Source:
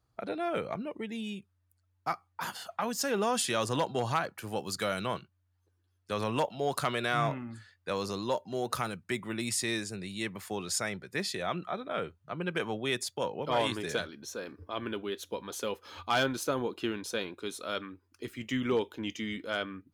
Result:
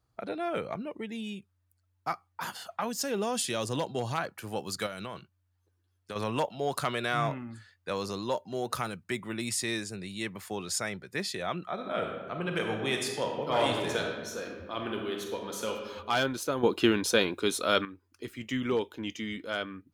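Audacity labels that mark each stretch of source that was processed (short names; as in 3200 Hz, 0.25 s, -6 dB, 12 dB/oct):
2.870000	4.180000	dynamic EQ 1300 Hz, up to -6 dB, over -44 dBFS, Q 0.92
4.860000	6.160000	compressor, threshold -34 dBFS
11.730000	15.710000	reverb throw, RT60 1.4 s, DRR 1.5 dB
16.630000	17.850000	gain +9.5 dB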